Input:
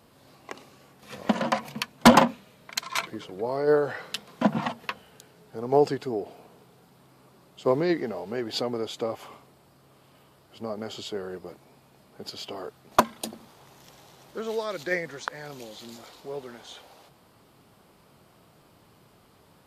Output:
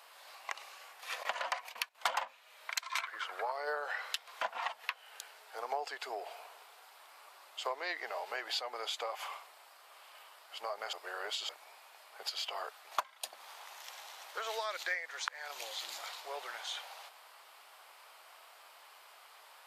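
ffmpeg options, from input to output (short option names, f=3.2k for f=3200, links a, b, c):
-filter_complex "[0:a]asettb=1/sr,asplit=3[a][b][c];[a]atrim=end=1.234[d];[b]atrim=start=1.23:end=1.95,asetpts=PTS-STARTPTS,afade=t=in:d=0.004:c=qsin,afade=t=out:st=0.716:d=0.004:c=qsin,agate=range=-12dB:threshold=-45dB:ratio=16:release=100:detection=peak[e];[c]atrim=start=1.946[f];[d][e]acrossfade=d=0.004:c1=hsin:c2=qsin[g];[g][f]acrossfade=d=0.004:c1=qsin:c2=hsin,asettb=1/sr,asplit=3[h][i][j];[h]atrim=end=3.024[k];[i]atrim=start=3.02:end=3.52,asetpts=PTS-STARTPTS,afade=t=in:d=0.004:c=qsin,afade=t=out:st=0.496:d=0.004:c=qsin,equalizer=f=1.4k:t=o:w=0.97:g=14[l];[j]atrim=start=3.516[m];[k][l]acrossfade=d=0.004:c1=hsin:c2=qsin[n];[n][m]acrossfade=d=0.004:c1=qsin:c2=hsin,asplit=3[o][p][q];[o]atrim=end=10.932[r];[p]atrim=start=10.928:end=11.492,asetpts=PTS-STARTPTS,areverse[s];[q]atrim=start=11.488[t];[r][s]acrossfade=d=0.004:c1=hsin:c2=hsin[u];[u][t]acrossfade=d=0.004:c1=hsin:c2=hsin,highpass=f=700:w=0.5412,highpass=f=700:w=1.3066,equalizer=f=2.2k:t=o:w=1.4:g=4,acompressor=threshold=-39dB:ratio=4,volume=3.5dB"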